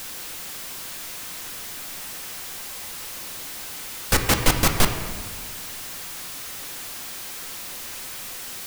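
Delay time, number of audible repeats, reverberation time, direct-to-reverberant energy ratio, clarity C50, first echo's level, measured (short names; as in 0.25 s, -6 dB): none, none, 1.5 s, 4.5 dB, 7.0 dB, none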